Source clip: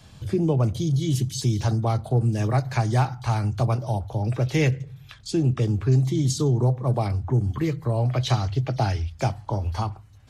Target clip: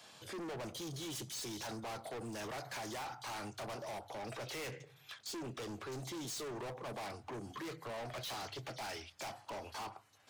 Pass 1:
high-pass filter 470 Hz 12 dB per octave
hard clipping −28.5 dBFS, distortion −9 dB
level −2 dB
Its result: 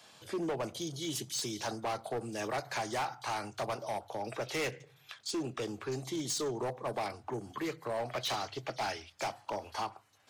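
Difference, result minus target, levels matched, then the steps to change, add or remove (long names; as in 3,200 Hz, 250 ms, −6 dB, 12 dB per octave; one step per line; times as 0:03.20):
hard clipping: distortion −6 dB
change: hard clipping −39.5 dBFS, distortion −2 dB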